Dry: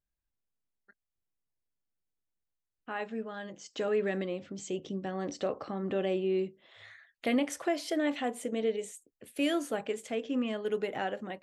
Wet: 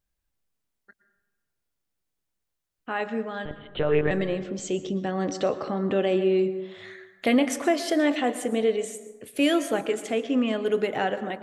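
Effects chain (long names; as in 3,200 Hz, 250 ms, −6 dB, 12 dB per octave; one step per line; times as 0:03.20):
0:03.45–0:04.11: one-pitch LPC vocoder at 8 kHz 150 Hz
dense smooth reverb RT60 1.2 s, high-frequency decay 0.4×, pre-delay 100 ms, DRR 12 dB
level +7.5 dB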